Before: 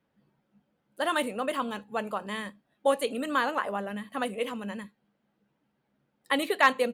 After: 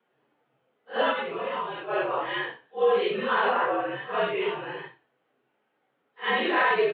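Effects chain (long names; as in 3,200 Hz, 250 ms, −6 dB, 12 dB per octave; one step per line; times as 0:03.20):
random phases in long frames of 200 ms
brickwall limiter −20 dBFS, peak gain reduction 9.5 dB
0:01.11–0:01.90: downward compressor, threshold −33 dBFS, peak gain reduction 7 dB
on a send: echo with shifted repeats 91 ms, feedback 34%, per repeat −36 Hz, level −21.5 dB
on the sum: single-sideband voice off tune −71 Hz 370–3,500 Hz
level +6.5 dB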